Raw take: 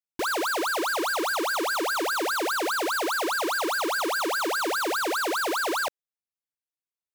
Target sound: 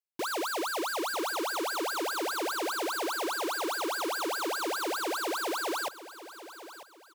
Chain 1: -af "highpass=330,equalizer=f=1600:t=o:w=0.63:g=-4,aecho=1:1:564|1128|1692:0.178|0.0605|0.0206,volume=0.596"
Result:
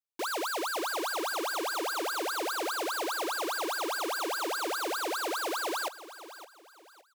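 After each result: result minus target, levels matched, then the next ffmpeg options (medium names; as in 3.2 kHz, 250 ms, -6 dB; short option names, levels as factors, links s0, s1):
125 Hz band -11.5 dB; echo 382 ms early
-af "highpass=120,equalizer=f=1600:t=o:w=0.63:g=-4,aecho=1:1:564|1128|1692:0.178|0.0605|0.0206,volume=0.596"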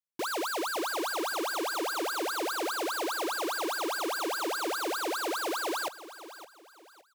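echo 382 ms early
-af "highpass=120,equalizer=f=1600:t=o:w=0.63:g=-4,aecho=1:1:946|1892|2838:0.178|0.0605|0.0206,volume=0.596"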